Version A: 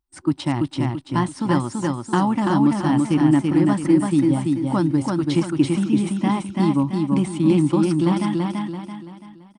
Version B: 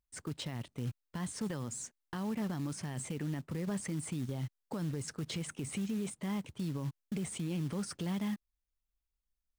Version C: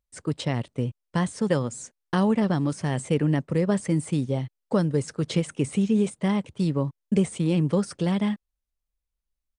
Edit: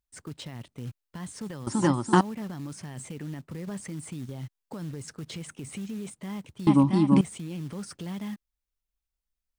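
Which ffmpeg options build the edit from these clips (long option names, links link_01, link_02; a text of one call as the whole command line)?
ffmpeg -i take0.wav -i take1.wav -filter_complex "[0:a]asplit=2[link_01][link_02];[1:a]asplit=3[link_03][link_04][link_05];[link_03]atrim=end=1.672[link_06];[link_01]atrim=start=1.668:end=2.212[link_07];[link_04]atrim=start=2.208:end=6.672[link_08];[link_02]atrim=start=6.668:end=7.212[link_09];[link_05]atrim=start=7.208[link_10];[link_06][link_07]acrossfade=duration=0.004:curve1=hsin:curve2=hsin[link_11];[link_11][link_08]acrossfade=duration=0.004:curve1=hsin:curve2=hsin[link_12];[link_12][link_09]acrossfade=duration=0.004:curve1=hsin:curve2=hsin[link_13];[link_13][link_10]acrossfade=duration=0.004:curve1=hsin:curve2=hsin" out.wav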